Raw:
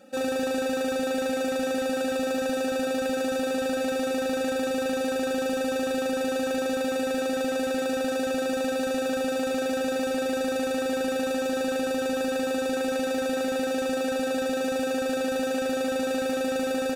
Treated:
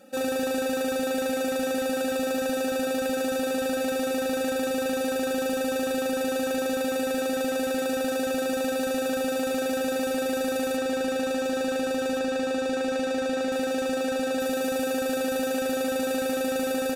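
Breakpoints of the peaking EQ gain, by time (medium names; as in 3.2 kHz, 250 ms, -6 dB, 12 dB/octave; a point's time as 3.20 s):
peaking EQ 13 kHz
+7.5 dB
from 10.77 s -1 dB
from 12.19 s -10 dB
from 13.52 s 0 dB
from 14.40 s +9 dB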